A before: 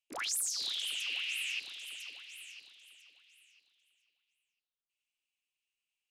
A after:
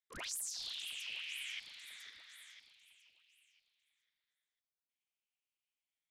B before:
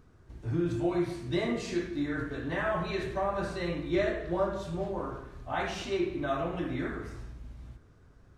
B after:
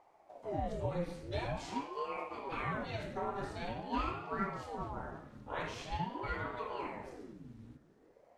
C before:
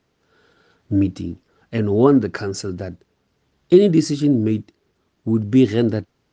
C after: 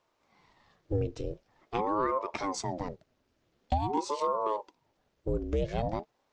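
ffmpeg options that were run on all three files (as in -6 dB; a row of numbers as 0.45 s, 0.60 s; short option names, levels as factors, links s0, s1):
-af "acompressor=threshold=0.112:ratio=6,aeval=exprs='val(0)*sin(2*PI*480*n/s+480*0.65/0.46*sin(2*PI*0.46*n/s))':c=same,volume=0.596"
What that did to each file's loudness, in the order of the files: -7.0 LU, -7.5 LU, -14.5 LU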